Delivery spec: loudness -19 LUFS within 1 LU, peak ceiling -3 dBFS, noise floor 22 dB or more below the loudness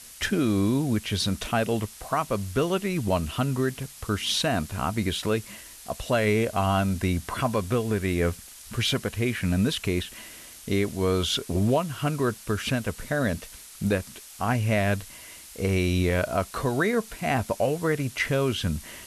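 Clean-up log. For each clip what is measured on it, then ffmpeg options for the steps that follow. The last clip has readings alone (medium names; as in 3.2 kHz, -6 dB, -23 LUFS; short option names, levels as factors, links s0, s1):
noise floor -46 dBFS; noise floor target -49 dBFS; loudness -26.5 LUFS; peak level -13.0 dBFS; loudness target -19.0 LUFS
-> -af "afftdn=nr=6:nf=-46"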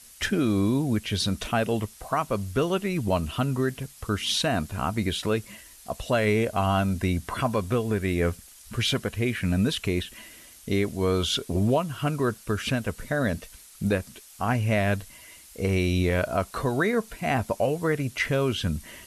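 noise floor -50 dBFS; loudness -26.5 LUFS; peak level -13.0 dBFS; loudness target -19.0 LUFS
-> -af "volume=2.37"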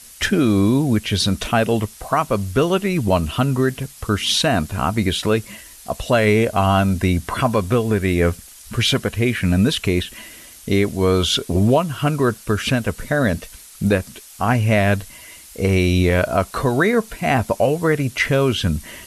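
loudness -19.0 LUFS; peak level -5.5 dBFS; noise floor -42 dBFS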